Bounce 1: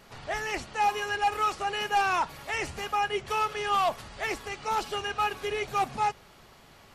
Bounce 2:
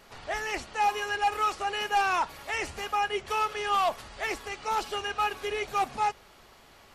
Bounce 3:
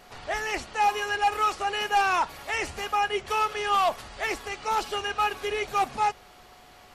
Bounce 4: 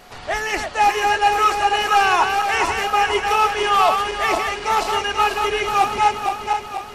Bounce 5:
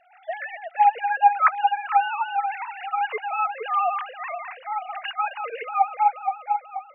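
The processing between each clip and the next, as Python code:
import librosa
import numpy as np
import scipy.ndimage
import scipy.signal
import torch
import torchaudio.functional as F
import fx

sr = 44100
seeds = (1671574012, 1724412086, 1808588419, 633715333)

y1 = fx.peak_eq(x, sr, hz=140.0, db=-7.5, octaves=1.2)
y2 = y1 + 10.0 ** (-58.0 / 20.0) * np.sin(2.0 * np.pi * 730.0 * np.arange(len(y1)) / sr)
y2 = y2 * 10.0 ** (2.5 / 20.0)
y3 = fx.reverse_delay_fb(y2, sr, ms=242, feedback_pct=71, wet_db=-5)
y3 = y3 * 10.0 ** (6.5 / 20.0)
y4 = fx.sine_speech(y3, sr)
y4 = y4 * 10.0 ** (-5.5 / 20.0)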